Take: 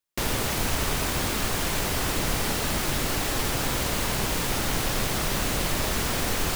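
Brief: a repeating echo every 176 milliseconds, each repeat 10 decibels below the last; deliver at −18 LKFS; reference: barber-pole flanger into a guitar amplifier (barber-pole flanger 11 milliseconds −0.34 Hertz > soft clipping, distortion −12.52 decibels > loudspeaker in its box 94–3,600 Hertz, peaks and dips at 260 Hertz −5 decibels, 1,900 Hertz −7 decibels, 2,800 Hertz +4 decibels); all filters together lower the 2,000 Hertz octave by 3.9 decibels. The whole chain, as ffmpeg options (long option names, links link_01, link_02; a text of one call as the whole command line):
ffmpeg -i in.wav -filter_complex "[0:a]equalizer=frequency=2000:width_type=o:gain=-3,aecho=1:1:176|352|528|704:0.316|0.101|0.0324|0.0104,asplit=2[link_01][link_02];[link_02]adelay=11,afreqshift=-0.34[link_03];[link_01][link_03]amix=inputs=2:normalize=1,asoftclip=threshold=-27.5dB,highpass=94,equalizer=frequency=260:width_type=q:width=4:gain=-5,equalizer=frequency=1900:width_type=q:width=4:gain=-7,equalizer=frequency=2800:width_type=q:width=4:gain=4,lowpass=frequency=3600:width=0.5412,lowpass=frequency=3600:width=1.3066,volume=18dB" out.wav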